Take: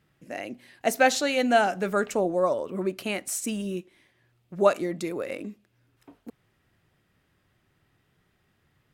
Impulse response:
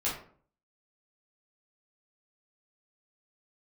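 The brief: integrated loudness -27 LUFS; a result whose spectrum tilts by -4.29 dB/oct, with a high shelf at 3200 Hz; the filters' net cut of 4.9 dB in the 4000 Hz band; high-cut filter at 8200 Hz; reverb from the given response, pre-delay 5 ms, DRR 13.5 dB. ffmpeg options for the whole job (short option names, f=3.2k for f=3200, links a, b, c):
-filter_complex "[0:a]lowpass=8.2k,highshelf=f=3.2k:g=3,equalizer=f=4k:t=o:g=-9,asplit=2[a][b];[1:a]atrim=start_sample=2205,adelay=5[c];[b][c]afir=irnorm=-1:irlink=0,volume=-20dB[d];[a][d]amix=inputs=2:normalize=0,volume=-0.5dB"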